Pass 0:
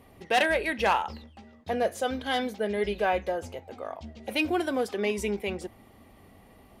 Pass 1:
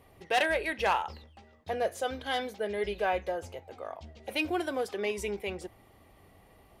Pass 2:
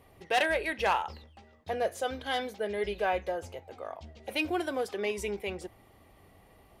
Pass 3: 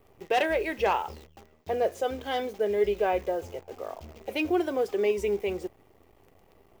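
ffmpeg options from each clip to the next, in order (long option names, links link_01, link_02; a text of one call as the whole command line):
ffmpeg -i in.wav -af "equalizer=frequency=230:width_type=o:width=0.42:gain=-9.5,volume=-3dB" out.wav
ffmpeg -i in.wav -af anull out.wav
ffmpeg -i in.wav -af "acrusher=bits=9:dc=4:mix=0:aa=0.000001,equalizer=frequency=400:width_type=o:width=0.67:gain=7,equalizer=frequency=1600:width_type=o:width=0.67:gain=-4,equalizer=frequency=4000:width_type=o:width=0.67:gain=-5,equalizer=frequency=10000:width_type=o:width=0.67:gain=-9,volume=1.5dB" out.wav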